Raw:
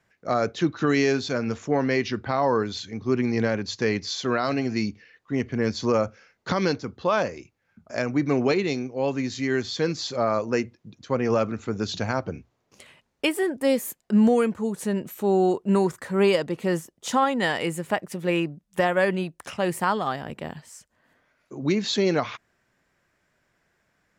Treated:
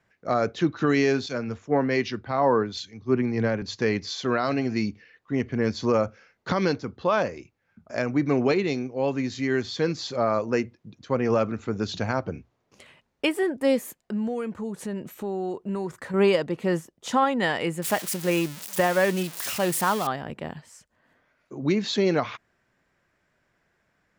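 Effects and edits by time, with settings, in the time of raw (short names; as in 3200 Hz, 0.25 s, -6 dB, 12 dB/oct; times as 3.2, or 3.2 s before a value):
1.26–3.62 three-band expander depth 100%
13.97–16.14 compressor 2.5:1, threshold -30 dBFS
17.82–20.07 switching spikes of -18 dBFS
whole clip: high shelf 5800 Hz -7.5 dB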